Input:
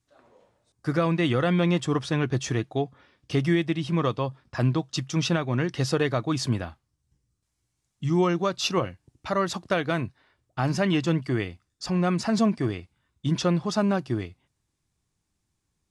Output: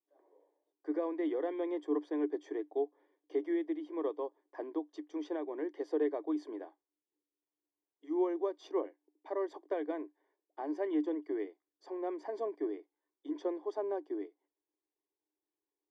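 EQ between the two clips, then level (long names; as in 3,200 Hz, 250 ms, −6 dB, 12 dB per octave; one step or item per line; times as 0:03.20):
moving average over 33 samples
Chebyshev high-pass with heavy ripple 290 Hz, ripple 6 dB
−1.5 dB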